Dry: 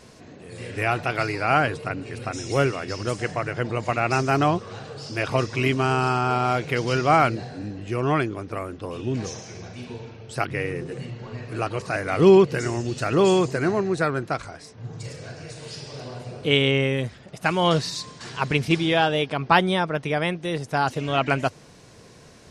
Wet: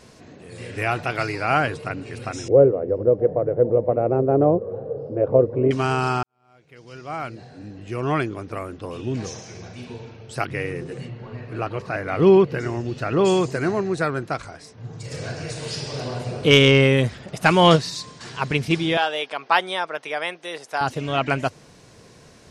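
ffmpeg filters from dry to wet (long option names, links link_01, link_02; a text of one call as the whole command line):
ffmpeg -i in.wav -filter_complex "[0:a]asettb=1/sr,asplit=3[link_01][link_02][link_03];[link_01]atrim=end=2.484[link_04];[link_02]atrim=start=2.48:end=5.71,asetpts=PTS-STARTPTS,afade=type=in:duration=0.004:curve=qsin,afade=type=out:start_time=3.226:duration=0.004:curve=qsin,lowpass=frequency=510:width_type=q:width=5.4[link_05];[link_03]atrim=start=5.706[link_06];[link_04][link_05]acrossfade=duration=0.004:curve1=hsin:curve2=qsin[link_07];[link_07][link_06]acrossfade=duration=0.004:curve1=qsin:curve2=hsin,asplit=3[link_08][link_09][link_10];[link_08]afade=type=out:start_time=11.07:duration=0.02[link_11];[link_09]equalizer=frequency=8500:width_type=o:width=1.5:gain=-14.5,afade=type=in:start_time=11.07:duration=0.02,afade=type=out:start_time=13.24:duration=0.02[link_12];[link_10]afade=type=in:start_time=13.24:duration=0.02[link_13];[link_11][link_12][link_13]amix=inputs=3:normalize=0,asplit=3[link_14][link_15][link_16];[link_14]afade=type=out:start_time=15.11:duration=0.02[link_17];[link_15]acontrast=87,afade=type=in:start_time=15.11:duration=0.02,afade=type=out:start_time=17.75:duration=0.02[link_18];[link_16]afade=type=in:start_time=17.75:duration=0.02[link_19];[link_17][link_18][link_19]amix=inputs=3:normalize=0,asettb=1/sr,asplit=3[link_20][link_21][link_22];[link_20]atrim=end=18.974[link_23];[link_21]atrim=start=18.97:end=20.81,asetpts=PTS-STARTPTS,afade=type=in:duration=0.004:curve=qsin,afade=type=out:start_time=1.836:duration=0.004:curve=qsin,highpass=570[link_24];[link_22]atrim=start=20.806[link_25];[link_23][link_24]acrossfade=duration=0.004:curve1=hsin:curve2=qsin[link_26];[link_26][link_25]acrossfade=duration=0.004:curve1=qsin:curve2=hsin,asplit=2[link_27][link_28];[link_27]atrim=end=6.23,asetpts=PTS-STARTPTS,afade=type=out:start_time=6.226:duration=0.004:curve=hsin[link_29];[link_28]atrim=start=6.23,asetpts=PTS-STARTPTS,afade=type=in:duration=1.95:curve=qua[link_30];[link_29][link_30]concat=n=2:v=0:a=1" out.wav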